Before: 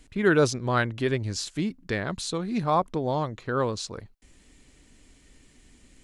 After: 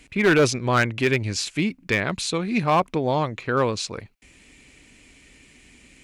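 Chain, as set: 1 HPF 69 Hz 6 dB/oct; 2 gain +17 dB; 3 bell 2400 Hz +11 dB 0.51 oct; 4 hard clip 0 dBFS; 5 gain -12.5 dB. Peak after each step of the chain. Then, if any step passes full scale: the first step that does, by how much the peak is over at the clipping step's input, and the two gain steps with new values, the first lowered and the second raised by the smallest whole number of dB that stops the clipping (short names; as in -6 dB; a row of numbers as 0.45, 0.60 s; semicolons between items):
-9.5, +7.5, +9.0, 0.0, -12.5 dBFS; step 2, 9.0 dB; step 2 +8 dB, step 5 -3.5 dB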